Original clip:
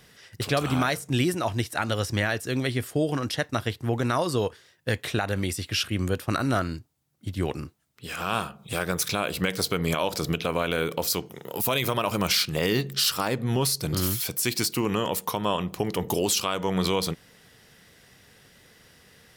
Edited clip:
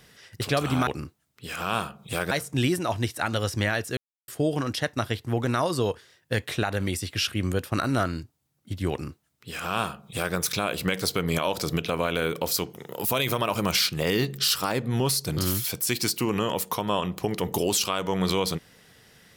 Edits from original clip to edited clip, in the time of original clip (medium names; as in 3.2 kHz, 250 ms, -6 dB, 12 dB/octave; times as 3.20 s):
2.53–2.84 s: mute
7.47–8.91 s: copy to 0.87 s